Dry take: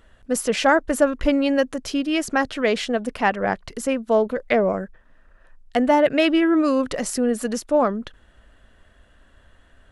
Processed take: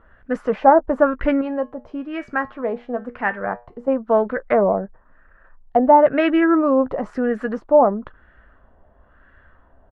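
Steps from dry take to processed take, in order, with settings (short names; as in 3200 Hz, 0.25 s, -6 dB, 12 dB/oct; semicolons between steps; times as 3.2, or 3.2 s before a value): 1.41–3.88 resonator 120 Hz, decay 0.29 s, harmonics all, mix 60%; LFO low-pass sine 0.99 Hz 810–1700 Hz; doubler 15 ms -14 dB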